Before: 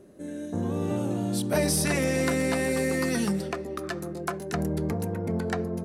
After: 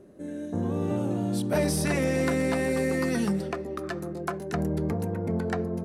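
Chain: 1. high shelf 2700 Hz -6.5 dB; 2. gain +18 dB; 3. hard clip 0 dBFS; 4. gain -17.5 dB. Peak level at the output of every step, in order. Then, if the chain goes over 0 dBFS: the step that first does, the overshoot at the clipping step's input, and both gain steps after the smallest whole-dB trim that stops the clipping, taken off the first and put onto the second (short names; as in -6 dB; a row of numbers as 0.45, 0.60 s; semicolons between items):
-13.5, +4.5, 0.0, -17.5 dBFS; step 2, 4.5 dB; step 2 +13 dB, step 4 -12.5 dB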